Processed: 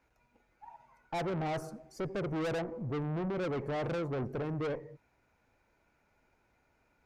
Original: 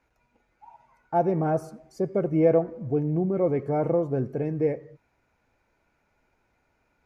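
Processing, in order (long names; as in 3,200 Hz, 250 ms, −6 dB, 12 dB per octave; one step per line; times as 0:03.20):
tube saturation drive 32 dB, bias 0.45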